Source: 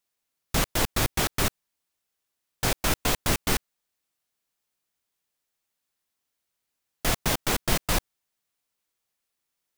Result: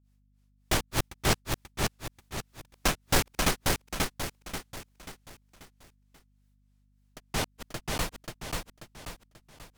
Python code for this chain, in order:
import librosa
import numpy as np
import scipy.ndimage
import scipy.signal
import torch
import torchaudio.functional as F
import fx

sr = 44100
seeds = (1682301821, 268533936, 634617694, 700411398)

p1 = fx.doppler_pass(x, sr, speed_mps=14, closest_m=19.0, pass_at_s=2.77)
p2 = fx.fold_sine(p1, sr, drive_db=13, ceiling_db=-11.0)
p3 = p1 + F.gain(torch.from_numpy(p2), -12.0).numpy()
p4 = fx.granulator(p3, sr, seeds[0], grain_ms=237.0, per_s=3.3, spray_ms=100.0, spread_st=0)
p5 = p4 + fx.echo_feedback(p4, sr, ms=536, feedback_pct=41, wet_db=-3, dry=0)
p6 = fx.add_hum(p5, sr, base_hz=50, snr_db=33)
y = fx.doppler_dist(p6, sr, depth_ms=0.63)